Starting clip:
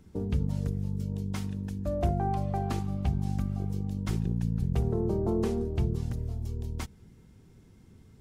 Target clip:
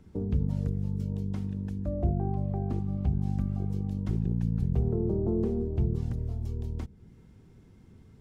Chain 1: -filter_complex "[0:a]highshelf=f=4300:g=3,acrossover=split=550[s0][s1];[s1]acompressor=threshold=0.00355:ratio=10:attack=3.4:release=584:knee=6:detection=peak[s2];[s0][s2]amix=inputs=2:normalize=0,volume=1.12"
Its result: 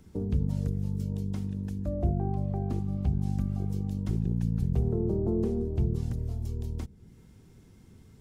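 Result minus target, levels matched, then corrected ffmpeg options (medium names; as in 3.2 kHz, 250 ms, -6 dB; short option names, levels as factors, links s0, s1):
8 kHz band +6.5 dB
-filter_complex "[0:a]highshelf=f=4300:g=-8,acrossover=split=550[s0][s1];[s1]acompressor=threshold=0.00355:ratio=10:attack=3.4:release=584:knee=6:detection=peak[s2];[s0][s2]amix=inputs=2:normalize=0,volume=1.12"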